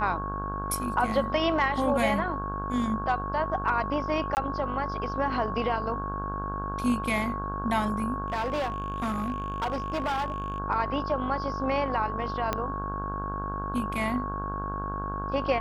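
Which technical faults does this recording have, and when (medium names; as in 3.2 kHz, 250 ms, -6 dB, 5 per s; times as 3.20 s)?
buzz 50 Hz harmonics 33 -35 dBFS
whine 1.1 kHz -33 dBFS
4.35–4.37 s: dropout 19 ms
8.28–10.58 s: clipped -25 dBFS
12.53 s: pop -12 dBFS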